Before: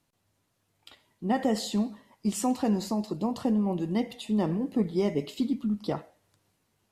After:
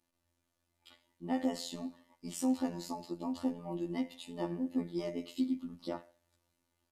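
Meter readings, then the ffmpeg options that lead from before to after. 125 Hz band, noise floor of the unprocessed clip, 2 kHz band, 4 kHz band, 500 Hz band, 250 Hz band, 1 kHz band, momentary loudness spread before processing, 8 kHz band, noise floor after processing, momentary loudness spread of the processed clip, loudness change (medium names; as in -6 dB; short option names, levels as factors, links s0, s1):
-13.5 dB, -75 dBFS, -8.5 dB, -7.5 dB, -9.5 dB, -8.0 dB, -9.5 dB, 5 LU, -8.0 dB, -82 dBFS, 10 LU, -8.0 dB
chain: -af "afftfilt=real='hypot(re,im)*cos(PI*b)':imag='0':win_size=2048:overlap=0.75,aecho=1:1:3.4:0.63,volume=0.531"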